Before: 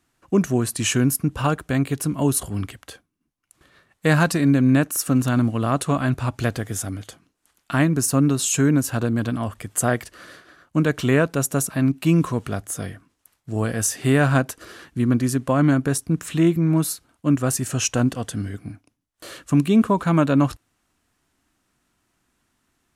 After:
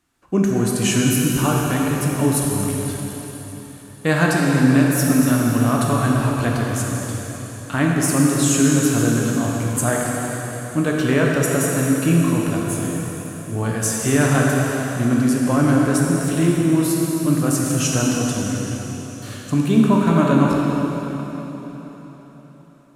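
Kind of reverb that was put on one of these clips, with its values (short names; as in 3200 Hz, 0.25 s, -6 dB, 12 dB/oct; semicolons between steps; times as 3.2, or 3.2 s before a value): plate-style reverb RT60 4.2 s, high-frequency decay 0.95×, DRR -3 dB; gain -1.5 dB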